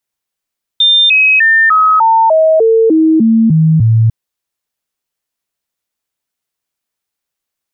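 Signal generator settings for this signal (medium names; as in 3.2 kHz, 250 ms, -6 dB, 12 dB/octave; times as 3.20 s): stepped sine 3.6 kHz down, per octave 2, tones 11, 0.30 s, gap 0.00 s -5 dBFS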